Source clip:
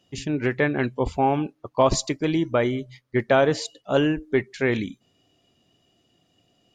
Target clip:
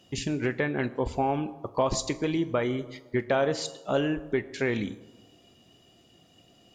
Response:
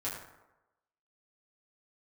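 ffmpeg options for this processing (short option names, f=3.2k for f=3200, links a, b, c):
-filter_complex "[0:a]acompressor=threshold=-39dB:ratio=2,asplit=2[a][b];[1:a]atrim=start_sample=2205,asetrate=31752,aresample=44100,highshelf=f=7.8k:g=11.5[c];[b][c]afir=irnorm=-1:irlink=0,volume=-16dB[d];[a][d]amix=inputs=2:normalize=0,volume=5dB"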